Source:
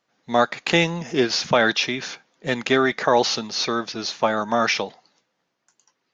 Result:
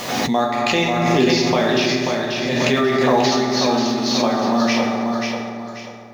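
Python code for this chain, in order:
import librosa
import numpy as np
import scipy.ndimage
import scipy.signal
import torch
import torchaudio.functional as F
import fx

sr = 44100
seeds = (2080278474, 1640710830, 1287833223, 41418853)

p1 = fx.law_mismatch(x, sr, coded='mu')
p2 = fx.peak_eq(p1, sr, hz=1500.0, db=-9.0, octaves=0.33)
p3 = p2 + fx.echo_feedback(p2, sr, ms=537, feedback_pct=31, wet_db=-4.5, dry=0)
p4 = fx.rev_fdn(p3, sr, rt60_s=1.9, lf_ratio=1.5, hf_ratio=0.45, size_ms=24.0, drr_db=-1.5)
p5 = fx.pre_swell(p4, sr, db_per_s=21.0)
y = p5 * librosa.db_to_amplitude(-3.5)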